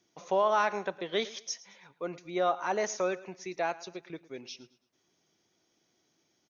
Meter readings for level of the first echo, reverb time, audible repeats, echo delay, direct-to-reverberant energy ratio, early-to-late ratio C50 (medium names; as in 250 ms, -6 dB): -19.0 dB, no reverb, 2, 110 ms, no reverb, no reverb